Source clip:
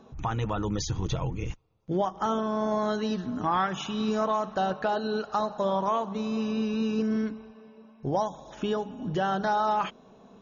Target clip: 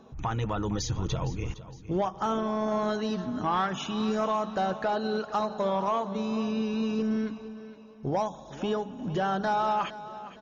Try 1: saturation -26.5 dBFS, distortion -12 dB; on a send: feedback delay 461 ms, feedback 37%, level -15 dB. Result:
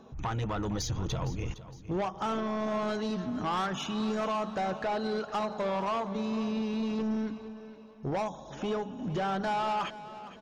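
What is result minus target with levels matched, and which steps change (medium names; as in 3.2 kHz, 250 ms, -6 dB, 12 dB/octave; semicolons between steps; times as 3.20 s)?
saturation: distortion +12 dB
change: saturation -17.5 dBFS, distortion -24 dB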